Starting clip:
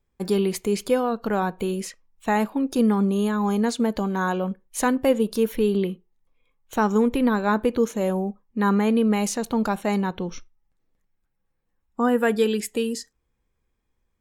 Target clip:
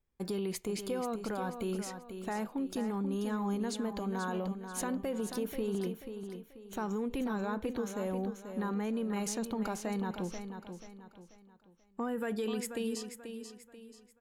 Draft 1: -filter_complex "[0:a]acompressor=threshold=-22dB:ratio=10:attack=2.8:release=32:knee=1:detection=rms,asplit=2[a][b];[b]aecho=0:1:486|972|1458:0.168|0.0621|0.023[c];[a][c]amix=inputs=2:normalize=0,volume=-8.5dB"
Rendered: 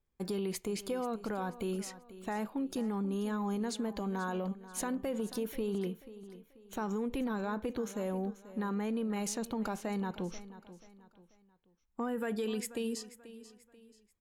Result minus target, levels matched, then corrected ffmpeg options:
echo-to-direct -7 dB
-filter_complex "[0:a]acompressor=threshold=-22dB:ratio=10:attack=2.8:release=32:knee=1:detection=rms,asplit=2[a][b];[b]aecho=0:1:486|972|1458|1944:0.376|0.139|0.0515|0.019[c];[a][c]amix=inputs=2:normalize=0,volume=-8.5dB"

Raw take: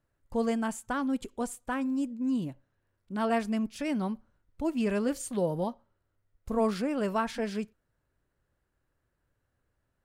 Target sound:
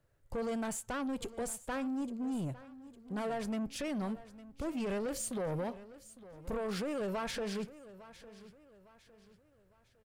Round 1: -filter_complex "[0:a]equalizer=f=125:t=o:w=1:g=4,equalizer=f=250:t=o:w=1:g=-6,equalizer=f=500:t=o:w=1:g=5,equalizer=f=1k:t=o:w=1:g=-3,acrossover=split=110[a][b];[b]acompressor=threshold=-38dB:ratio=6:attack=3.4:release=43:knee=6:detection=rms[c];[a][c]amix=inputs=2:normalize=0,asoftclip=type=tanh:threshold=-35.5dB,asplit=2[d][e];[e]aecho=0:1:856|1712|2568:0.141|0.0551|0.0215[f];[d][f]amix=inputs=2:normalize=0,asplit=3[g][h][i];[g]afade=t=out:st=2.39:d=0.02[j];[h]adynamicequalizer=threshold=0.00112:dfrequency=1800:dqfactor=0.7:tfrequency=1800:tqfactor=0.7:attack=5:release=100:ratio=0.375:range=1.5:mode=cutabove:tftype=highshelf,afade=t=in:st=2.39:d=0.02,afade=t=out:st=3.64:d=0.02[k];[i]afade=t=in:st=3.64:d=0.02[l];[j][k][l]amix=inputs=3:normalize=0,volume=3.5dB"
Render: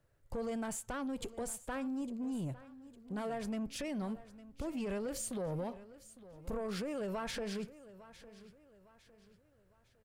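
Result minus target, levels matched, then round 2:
compressor: peak gain reduction +5 dB
-filter_complex "[0:a]equalizer=f=125:t=o:w=1:g=4,equalizer=f=250:t=o:w=1:g=-6,equalizer=f=500:t=o:w=1:g=5,equalizer=f=1k:t=o:w=1:g=-3,acrossover=split=110[a][b];[b]acompressor=threshold=-32dB:ratio=6:attack=3.4:release=43:knee=6:detection=rms[c];[a][c]amix=inputs=2:normalize=0,asoftclip=type=tanh:threshold=-35.5dB,asplit=2[d][e];[e]aecho=0:1:856|1712|2568:0.141|0.0551|0.0215[f];[d][f]amix=inputs=2:normalize=0,asplit=3[g][h][i];[g]afade=t=out:st=2.39:d=0.02[j];[h]adynamicequalizer=threshold=0.00112:dfrequency=1800:dqfactor=0.7:tfrequency=1800:tqfactor=0.7:attack=5:release=100:ratio=0.375:range=1.5:mode=cutabove:tftype=highshelf,afade=t=in:st=2.39:d=0.02,afade=t=out:st=3.64:d=0.02[k];[i]afade=t=in:st=3.64:d=0.02[l];[j][k][l]amix=inputs=3:normalize=0,volume=3.5dB"

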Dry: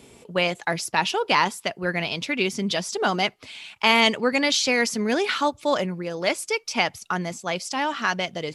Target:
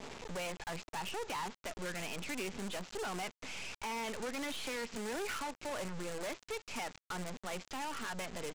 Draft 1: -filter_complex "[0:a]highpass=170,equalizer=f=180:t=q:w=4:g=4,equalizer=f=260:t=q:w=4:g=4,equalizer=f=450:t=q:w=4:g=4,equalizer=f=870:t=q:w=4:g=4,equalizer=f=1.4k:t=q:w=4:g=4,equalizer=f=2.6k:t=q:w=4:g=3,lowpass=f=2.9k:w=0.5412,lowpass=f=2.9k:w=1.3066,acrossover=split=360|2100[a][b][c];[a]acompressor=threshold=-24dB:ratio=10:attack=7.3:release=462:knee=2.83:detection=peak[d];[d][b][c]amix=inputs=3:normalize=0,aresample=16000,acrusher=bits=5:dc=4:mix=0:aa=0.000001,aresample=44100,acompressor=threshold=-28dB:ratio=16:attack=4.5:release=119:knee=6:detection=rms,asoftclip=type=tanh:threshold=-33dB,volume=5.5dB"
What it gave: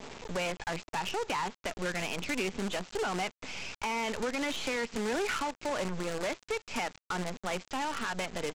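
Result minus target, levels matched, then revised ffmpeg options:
soft clip: distortion -5 dB
-filter_complex "[0:a]highpass=170,equalizer=f=180:t=q:w=4:g=4,equalizer=f=260:t=q:w=4:g=4,equalizer=f=450:t=q:w=4:g=4,equalizer=f=870:t=q:w=4:g=4,equalizer=f=1.4k:t=q:w=4:g=4,equalizer=f=2.6k:t=q:w=4:g=3,lowpass=f=2.9k:w=0.5412,lowpass=f=2.9k:w=1.3066,acrossover=split=360|2100[a][b][c];[a]acompressor=threshold=-24dB:ratio=10:attack=7.3:release=462:knee=2.83:detection=peak[d];[d][b][c]amix=inputs=3:normalize=0,aresample=16000,acrusher=bits=5:dc=4:mix=0:aa=0.000001,aresample=44100,acompressor=threshold=-28dB:ratio=16:attack=4.5:release=119:knee=6:detection=rms,asoftclip=type=tanh:threshold=-42dB,volume=5.5dB"

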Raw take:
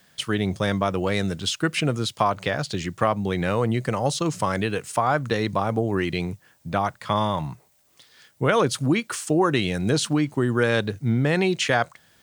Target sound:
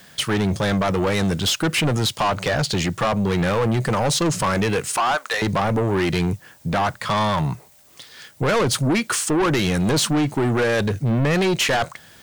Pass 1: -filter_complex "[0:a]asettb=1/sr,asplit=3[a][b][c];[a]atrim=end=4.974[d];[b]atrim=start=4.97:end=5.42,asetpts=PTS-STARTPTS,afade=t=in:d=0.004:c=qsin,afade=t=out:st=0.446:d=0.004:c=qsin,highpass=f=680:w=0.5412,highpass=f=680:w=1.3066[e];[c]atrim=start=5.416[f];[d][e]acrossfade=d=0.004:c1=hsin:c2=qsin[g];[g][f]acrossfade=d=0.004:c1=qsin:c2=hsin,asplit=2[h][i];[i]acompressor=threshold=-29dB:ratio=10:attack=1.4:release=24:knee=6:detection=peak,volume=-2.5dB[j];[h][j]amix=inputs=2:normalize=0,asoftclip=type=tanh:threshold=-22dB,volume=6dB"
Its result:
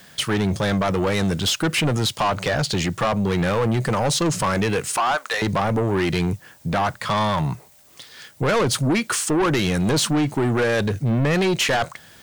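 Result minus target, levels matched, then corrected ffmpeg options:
compressor: peak gain reduction +6 dB
-filter_complex "[0:a]asettb=1/sr,asplit=3[a][b][c];[a]atrim=end=4.974[d];[b]atrim=start=4.97:end=5.42,asetpts=PTS-STARTPTS,afade=t=in:d=0.004:c=qsin,afade=t=out:st=0.446:d=0.004:c=qsin,highpass=f=680:w=0.5412,highpass=f=680:w=1.3066[e];[c]atrim=start=5.416[f];[d][e]acrossfade=d=0.004:c1=hsin:c2=qsin[g];[g][f]acrossfade=d=0.004:c1=qsin:c2=hsin,asplit=2[h][i];[i]acompressor=threshold=-22dB:ratio=10:attack=1.4:release=24:knee=6:detection=peak,volume=-2.5dB[j];[h][j]amix=inputs=2:normalize=0,asoftclip=type=tanh:threshold=-22dB,volume=6dB"

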